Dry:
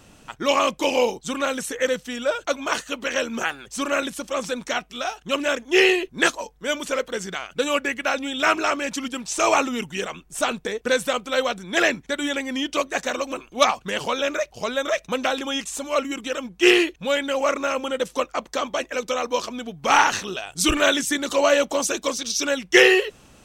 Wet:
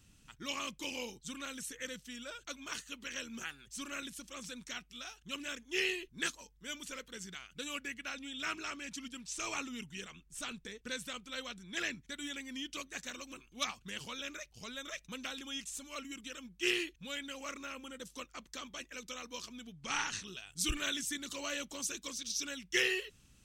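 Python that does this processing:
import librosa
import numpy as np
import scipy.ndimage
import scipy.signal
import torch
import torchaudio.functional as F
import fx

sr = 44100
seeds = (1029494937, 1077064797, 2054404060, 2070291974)

y = fx.high_shelf(x, sr, hz=11000.0, db=-7.5, at=(7.93, 12.02))
y = fx.peak_eq(y, sr, hz=fx.line((17.64, 8300.0), (18.11, 2000.0)), db=-7.5, octaves=0.77, at=(17.64, 18.11), fade=0.02)
y = fx.lowpass(y, sr, hz=9800.0, slope=24, at=(19.72, 20.27))
y = fx.tone_stack(y, sr, knobs='6-0-2')
y = F.gain(torch.from_numpy(y), 3.0).numpy()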